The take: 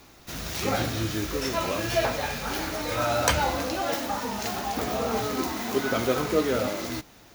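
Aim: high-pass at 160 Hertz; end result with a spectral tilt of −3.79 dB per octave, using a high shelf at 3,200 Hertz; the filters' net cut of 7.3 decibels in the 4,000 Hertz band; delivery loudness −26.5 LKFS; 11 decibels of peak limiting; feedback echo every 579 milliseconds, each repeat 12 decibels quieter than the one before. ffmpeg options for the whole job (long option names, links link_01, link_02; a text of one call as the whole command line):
ffmpeg -i in.wav -af "highpass=160,highshelf=frequency=3200:gain=-8.5,equalizer=frequency=4000:width_type=o:gain=-3,alimiter=limit=-19.5dB:level=0:latency=1,aecho=1:1:579|1158|1737:0.251|0.0628|0.0157,volume=4dB" out.wav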